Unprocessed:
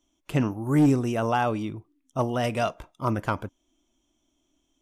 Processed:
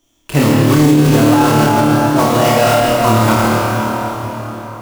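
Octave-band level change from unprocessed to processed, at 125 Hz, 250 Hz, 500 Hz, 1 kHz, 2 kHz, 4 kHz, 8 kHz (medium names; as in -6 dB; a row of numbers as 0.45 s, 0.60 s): +14.5 dB, +14.5 dB, +15.5 dB, +16.0 dB, +16.5 dB, +20.0 dB, +23.0 dB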